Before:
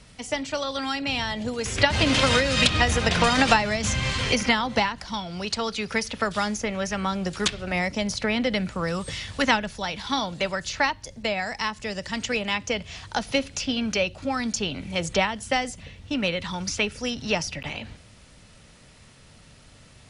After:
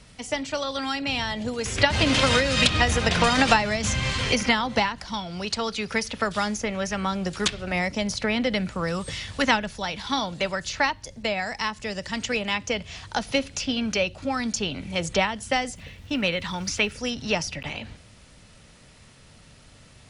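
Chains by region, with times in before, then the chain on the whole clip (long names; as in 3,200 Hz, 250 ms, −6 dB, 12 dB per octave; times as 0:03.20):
0:15.75–0:16.95: parametric band 2,000 Hz +2.5 dB 1.3 octaves + surface crackle 530 per second −49 dBFS
whole clip: no processing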